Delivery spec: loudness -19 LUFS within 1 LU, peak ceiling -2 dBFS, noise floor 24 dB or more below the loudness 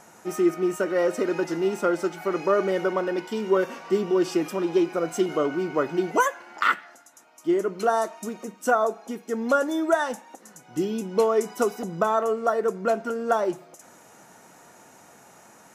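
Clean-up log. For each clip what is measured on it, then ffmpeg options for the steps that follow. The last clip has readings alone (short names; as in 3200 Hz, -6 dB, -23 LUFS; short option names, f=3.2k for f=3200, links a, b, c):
loudness -25.0 LUFS; peak -9.5 dBFS; loudness target -19.0 LUFS
-> -af "volume=6dB"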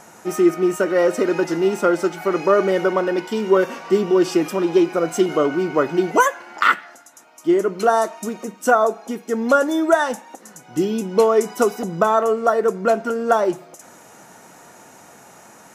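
loudness -19.0 LUFS; peak -3.5 dBFS; noise floor -46 dBFS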